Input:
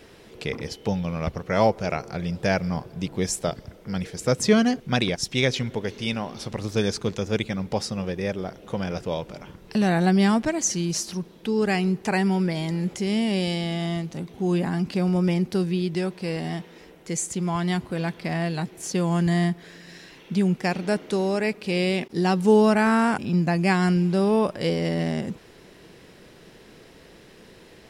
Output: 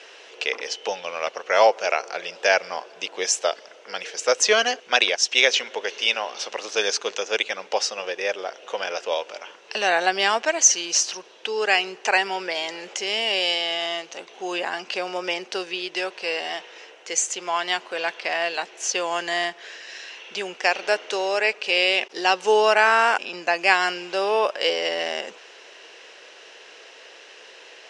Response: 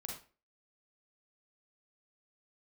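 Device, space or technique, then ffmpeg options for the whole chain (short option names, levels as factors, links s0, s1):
phone speaker on a table: -af "highpass=f=490:w=0.5412,highpass=f=490:w=1.3066,equalizer=f=1600:t=q:w=4:g=3,equalizer=f=2800:t=q:w=4:g=9,equalizer=f=6100:t=q:w=4:g=6,lowpass=f=7400:w=0.5412,lowpass=f=7400:w=1.3066,volume=1.78"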